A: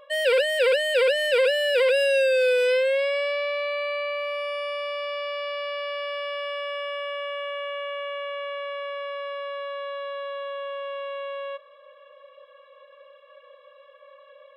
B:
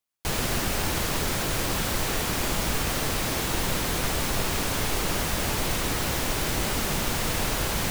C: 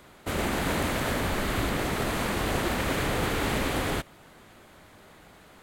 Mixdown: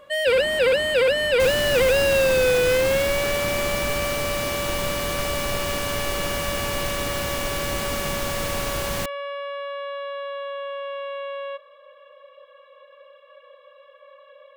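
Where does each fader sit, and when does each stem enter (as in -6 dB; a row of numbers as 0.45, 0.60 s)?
+1.5, -1.5, -9.0 dB; 0.00, 1.15, 0.00 s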